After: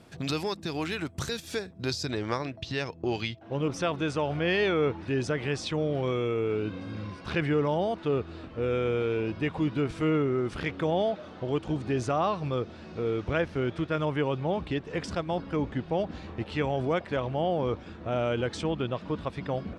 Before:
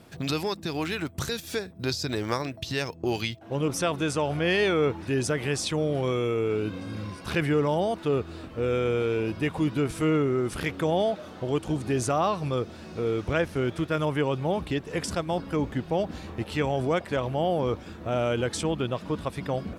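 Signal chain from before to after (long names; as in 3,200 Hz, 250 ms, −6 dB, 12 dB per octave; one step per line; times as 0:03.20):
low-pass filter 10,000 Hz 12 dB per octave, from 0:02.11 4,600 Hz
level −2 dB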